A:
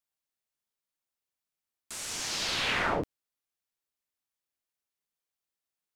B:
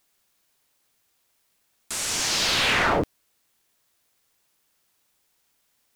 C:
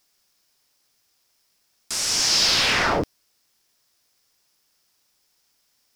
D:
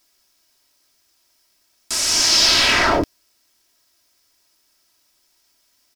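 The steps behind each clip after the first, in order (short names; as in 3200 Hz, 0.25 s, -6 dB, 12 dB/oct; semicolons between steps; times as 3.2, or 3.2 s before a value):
sample leveller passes 2; requantised 12-bit, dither triangular; gain +2.5 dB
bell 5200 Hz +10 dB 0.45 oct
comb 3.1 ms, depth 52%; gain +3.5 dB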